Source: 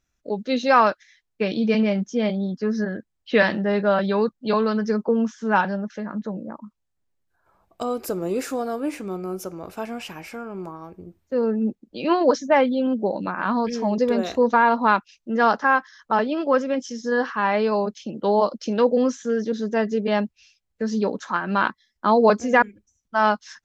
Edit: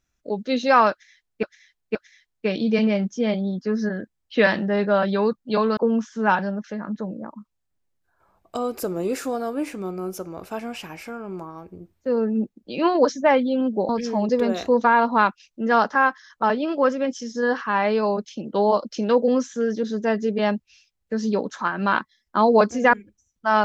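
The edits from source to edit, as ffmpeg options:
-filter_complex "[0:a]asplit=5[a][b][c][d][e];[a]atrim=end=1.432[f];[b]atrim=start=0.908:end=1.432[g];[c]atrim=start=0.908:end=4.732[h];[d]atrim=start=5.028:end=13.152[i];[e]atrim=start=13.578[j];[f][g]acrossfade=d=0.004:c1=hsin:c2=hsin[k];[k][h]acrossfade=d=0.004:c1=hsin:c2=hsin[l];[l][i]acrossfade=d=0.004:c1=hsin:c2=hsin[m];[m][j]acrossfade=d=0.004:c1=hsin:c2=hsin"

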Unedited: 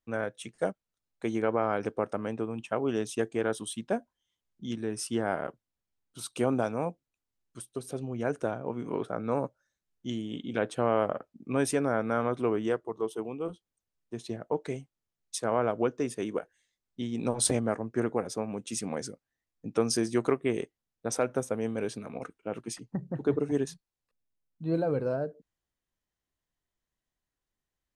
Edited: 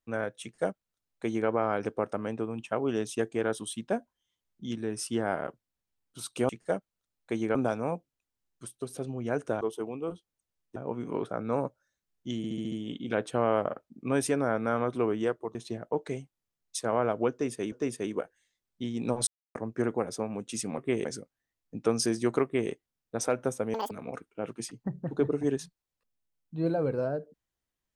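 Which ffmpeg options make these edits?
-filter_complex "[0:a]asplit=18[a][b][c][d][e][f][g][h][i][j][k][l][m][n][o][p][q][r];[a]atrim=end=6.492[s];[b]atrim=start=0.418:end=1.482[t];[c]atrim=start=6.488:end=8.552[u];[d]atrim=start=12.988:end=14.142[v];[e]atrim=start=8.548:end=10.232[w];[f]atrim=start=10.158:end=10.232[x];[g]atrim=start=10.158:end=10.232[y];[h]atrim=start=10.158:end=10.232[z];[i]atrim=start=10.158:end=10.232[aa];[j]atrim=start=10.158:end=12.992[ab];[k]atrim=start=14.138:end=16.312[ac];[l]atrim=start=15.898:end=17.45,asetpts=PTS-STARTPTS,afade=t=out:st=1.548:d=0.004:c=hsin[ad];[m]atrim=start=17.45:end=17.73,asetpts=PTS-STARTPTS,volume=0[ae];[n]atrim=start=17.73:end=18.962,asetpts=PTS-STARTPTS,afade=t=in:d=0.004:c=hsin[af];[o]atrim=start=20.348:end=20.622[ag];[p]atrim=start=18.958:end=21.654[ah];[q]atrim=start=21.65:end=21.99,asetpts=PTS-STARTPTS,asetrate=87759,aresample=44100[ai];[r]atrim=start=21.986[aj];[s][t]acrossfade=d=0.004:c1=hsin:c2=hsin[ak];[ak][u]acrossfade=d=0.004:c1=hsin:c2=hsin[al];[al][v]acrossfade=d=0.004:c1=hsin:c2=hsin[am];[am][w]acrossfade=d=0.004:c1=hsin:c2=hsin[an];[an][x]acrossfade=d=0.004:c1=hsin:c2=hsin[ao];[ao][y]acrossfade=d=0.004:c1=hsin:c2=hsin[ap];[ap][z]acrossfade=d=0.004:c1=hsin:c2=hsin[aq];[aq][aa]acrossfade=d=0.004:c1=hsin:c2=hsin[ar];[ar][ab]acrossfade=d=0.004:c1=hsin:c2=hsin[as];[as][ac]acrossfade=d=0.004:c1=hsin:c2=hsin[at];[ad][ae][af]concat=n=3:v=0:a=1[au];[at][au]acrossfade=d=0.004:c1=hsin:c2=hsin[av];[av][ag]acrossfade=d=0.004:c1=hsin:c2=hsin[aw];[aw][ah]acrossfade=d=0.004:c1=hsin:c2=hsin[ax];[ax][ai]acrossfade=d=0.004:c1=hsin:c2=hsin[ay];[ay][aj]acrossfade=d=0.004:c1=hsin:c2=hsin"

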